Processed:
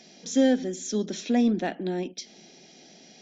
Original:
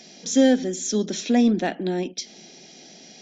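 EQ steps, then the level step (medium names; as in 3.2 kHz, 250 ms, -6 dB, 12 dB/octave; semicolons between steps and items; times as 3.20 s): treble shelf 5 kHz -5 dB; -4.0 dB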